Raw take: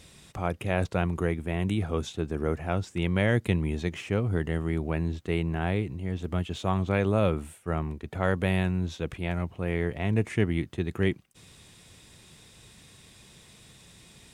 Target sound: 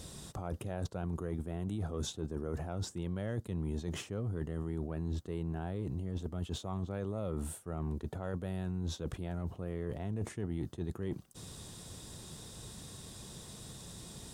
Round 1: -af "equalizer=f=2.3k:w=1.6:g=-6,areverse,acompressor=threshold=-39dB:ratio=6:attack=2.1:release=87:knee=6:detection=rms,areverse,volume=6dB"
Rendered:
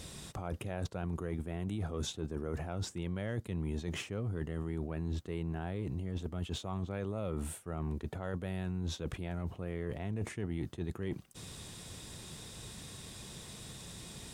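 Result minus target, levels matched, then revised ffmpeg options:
2000 Hz band +4.5 dB
-af "equalizer=f=2.3k:w=1.6:g=-14,areverse,acompressor=threshold=-39dB:ratio=6:attack=2.1:release=87:knee=6:detection=rms,areverse,volume=6dB"

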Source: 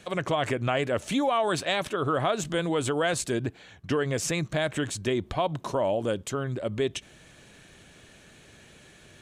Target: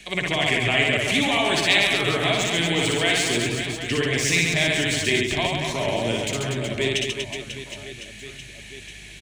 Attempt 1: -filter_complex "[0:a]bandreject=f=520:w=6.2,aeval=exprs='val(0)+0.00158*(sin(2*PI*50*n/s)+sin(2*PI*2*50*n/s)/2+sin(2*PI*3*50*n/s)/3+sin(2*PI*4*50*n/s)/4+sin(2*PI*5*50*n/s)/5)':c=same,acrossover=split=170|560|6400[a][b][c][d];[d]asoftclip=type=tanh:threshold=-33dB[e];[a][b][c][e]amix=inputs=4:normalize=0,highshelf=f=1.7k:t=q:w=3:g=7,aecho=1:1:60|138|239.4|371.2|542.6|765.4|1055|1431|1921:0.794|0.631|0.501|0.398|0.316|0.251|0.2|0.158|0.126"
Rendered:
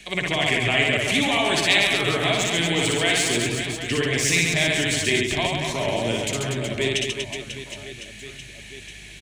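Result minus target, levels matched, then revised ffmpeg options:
soft clip: distortion -7 dB
-filter_complex "[0:a]bandreject=f=520:w=6.2,aeval=exprs='val(0)+0.00158*(sin(2*PI*50*n/s)+sin(2*PI*2*50*n/s)/2+sin(2*PI*3*50*n/s)/3+sin(2*PI*4*50*n/s)/4+sin(2*PI*5*50*n/s)/5)':c=same,acrossover=split=170|560|6400[a][b][c][d];[d]asoftclip=type=tanh:threshold=-41dB[e];[a][b][c][e]amix=inputs=4:normalize=0,highshelf=f=1.7k:t=q:w=3:g=7,aecho=1:1:60|138|239.4|371.2|542.6|765.4|1055|1431|1921:0.794|0.631|0.501|0.398|0.316|0.251|0.2|0.158|0.126"

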